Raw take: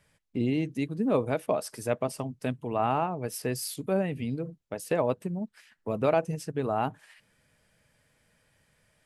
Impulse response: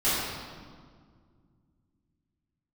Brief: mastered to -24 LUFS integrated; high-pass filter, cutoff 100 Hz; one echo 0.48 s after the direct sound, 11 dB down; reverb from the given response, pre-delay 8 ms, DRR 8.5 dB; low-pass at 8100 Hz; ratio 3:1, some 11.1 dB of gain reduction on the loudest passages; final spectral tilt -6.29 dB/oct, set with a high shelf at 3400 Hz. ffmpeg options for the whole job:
-filter_complex "[0:a]highpass=100,lowpass=8.1k,highshelf=f=3.4k:g=-3.5,acompressor=threshold=-35dB:ratio=3,aecho=1:1:480:0.282,asplit=2[a][b];[1:a]atrim=start_sample=2205,adelay=8[c];[b][c]afir=irnorm=-1:irlink=0,volume=-22.5dB[d];[a][d]amix=inputs=2:normalize=0,volume=14dB"

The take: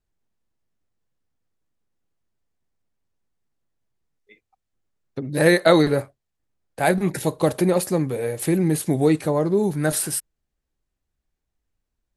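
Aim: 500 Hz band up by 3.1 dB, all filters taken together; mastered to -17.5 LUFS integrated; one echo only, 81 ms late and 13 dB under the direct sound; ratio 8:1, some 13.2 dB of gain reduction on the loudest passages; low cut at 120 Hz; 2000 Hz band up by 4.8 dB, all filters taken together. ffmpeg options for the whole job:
-af "highpass=120,equalizer=f=500:t=o:g=3.5,equalizer=f=2k:t=o:g=5.5,acompressor=threshold=-21dB:ratio=8,aecho=1:1:81:0.224,volume=8.5dB"

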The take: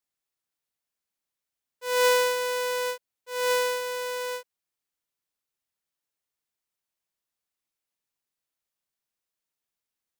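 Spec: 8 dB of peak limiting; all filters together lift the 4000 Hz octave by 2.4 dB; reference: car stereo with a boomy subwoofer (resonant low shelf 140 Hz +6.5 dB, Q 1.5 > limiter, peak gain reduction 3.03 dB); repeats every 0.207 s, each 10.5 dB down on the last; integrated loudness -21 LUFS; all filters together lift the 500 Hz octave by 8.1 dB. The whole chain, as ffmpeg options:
-af "equalizer=f=500:t=o:g=8.5,equalizer=f=4k:t=o:g=3,alimiter=limit=-17dB:level=0:latency=1,lowshelf=f=140:t=q:w=1.5:g=6.5,aecho=1:1:207|414|621:0.299|0.0896|0.0269,volume=2.5dB,alimiter=limit=-16dB:level=0:latency=1"

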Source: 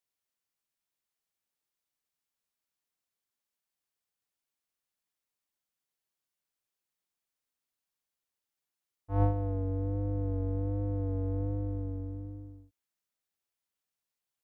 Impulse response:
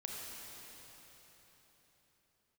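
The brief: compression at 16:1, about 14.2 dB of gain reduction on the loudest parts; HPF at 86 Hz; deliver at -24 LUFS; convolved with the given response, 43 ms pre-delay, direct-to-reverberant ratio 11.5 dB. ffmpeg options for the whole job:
-filter_complex "[0:a]highpass=86,acompressor=threshold=-35dB:ratio=16,asplit=2[a][b];[1:a]atrim=start_sample=2205,adelay=43[c];[b][c]afir=irnorm=-1:irlink=0,volume=-11.5dB[d];[a][d]amix=inputs=2:normalize=0,volume=17.5dB"

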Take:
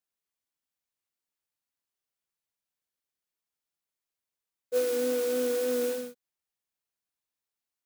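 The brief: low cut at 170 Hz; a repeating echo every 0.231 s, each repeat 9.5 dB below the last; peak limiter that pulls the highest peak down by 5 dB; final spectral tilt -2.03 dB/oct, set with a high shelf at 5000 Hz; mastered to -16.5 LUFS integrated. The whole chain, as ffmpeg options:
-af "highpass=170,highshelf=f=5k:g=-3,alimiter=limit=-23.5dB:level=0:latency=1,aecho=1:1:231|462|693|924:0.335|0.111|0.0365|0.012,volume=14.5dB"

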